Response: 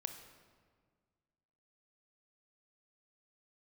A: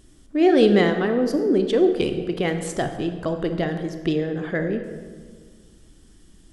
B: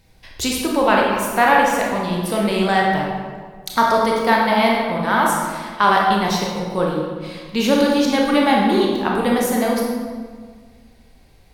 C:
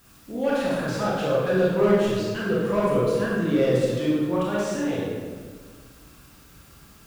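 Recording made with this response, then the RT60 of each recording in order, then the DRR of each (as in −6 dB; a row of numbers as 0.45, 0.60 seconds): A; 1.7, 1.7, 1.7 seconds; 6.5, −2.5, −7.0 decibels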